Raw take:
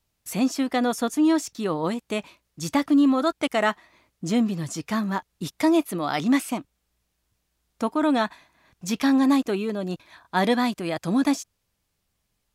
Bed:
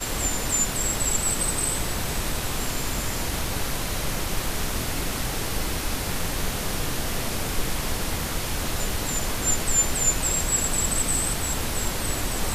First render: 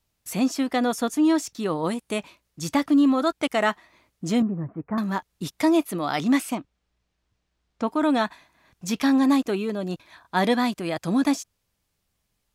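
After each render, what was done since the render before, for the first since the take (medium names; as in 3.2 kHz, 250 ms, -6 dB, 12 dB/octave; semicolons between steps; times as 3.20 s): 1.71–2.19 s: peaking EQ 9.6 kHz +9.5 dB 0.31 oct; 4.42–4.98 s: Bessel low-pass 1 kHz, order 8; 6.55–7.88 s: distance through air 97 m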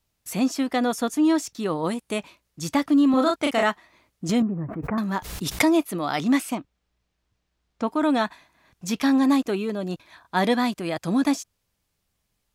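3.10–3.63 s: doubling 35 ms -2.5 dB; 4.29–5.68 s: swell ahead of each attack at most 57 dB/s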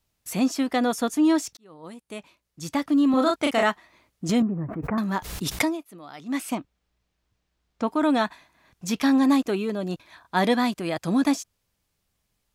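1.57–3.35 s: fade in; 5.54–6.50 s: dip -16 dB, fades 0.24 s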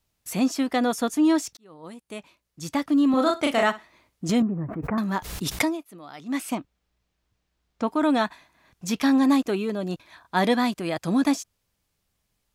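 3.08–4.25 s: flutter echo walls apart 10.9 m, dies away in 0.22 s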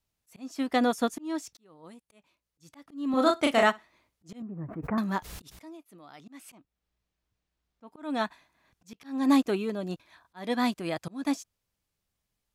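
slow attack 343 ms; upward expansion 1.5:1, over -34 dBFS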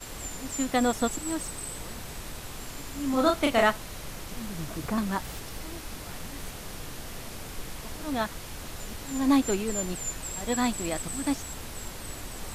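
add bed -12 dB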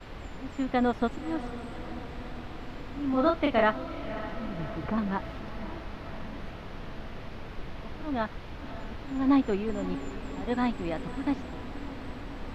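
distance through air 320 m; echo that smears into a reverb 576 ms, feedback 65%, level -13 dB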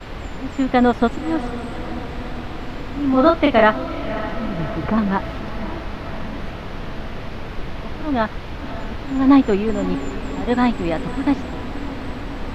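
trim +10.5 dB; peak limiter -2 dBFS, peak gain reduction 1 dB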